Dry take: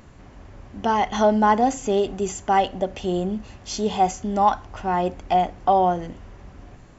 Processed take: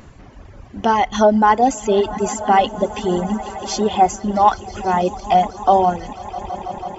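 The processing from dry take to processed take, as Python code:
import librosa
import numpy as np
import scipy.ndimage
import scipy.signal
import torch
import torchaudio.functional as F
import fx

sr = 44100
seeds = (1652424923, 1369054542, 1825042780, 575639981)

y = fx.echo_swell(x, sr, ms=164, loudest=5, wet_db=-17.0)
y = fx.dereverb_blind(y, sr, rt60_s=1.5)
y = F.gain(torch.from_numpy(y), 5.5).numpy()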